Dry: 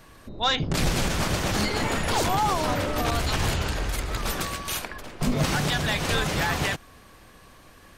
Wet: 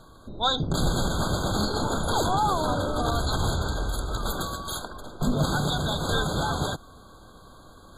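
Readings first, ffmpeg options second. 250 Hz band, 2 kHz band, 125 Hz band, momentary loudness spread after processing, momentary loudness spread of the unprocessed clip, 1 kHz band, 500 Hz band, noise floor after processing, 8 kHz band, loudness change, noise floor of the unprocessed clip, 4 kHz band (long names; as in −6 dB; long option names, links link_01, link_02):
0.0 dB, −6.0 dB, 0.0 dB, 7 LU, 6 LU, 0.0 dB, 0.0 dB, −50 dBFS, −3.0 dB, −1.0 dB, −51 dBFS, −1.5 dB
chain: -af "areverse,acompressor=mode=upward:threshold=-42dB:ratio=2.5,areverse,afftfilt=real='re*eq(mod(floor(b*sr/1024/1600),2),0)':imag='im*eq(mod(floor(b*sr/1024/1600),2),0)':win_size=1024:overlap=0.75"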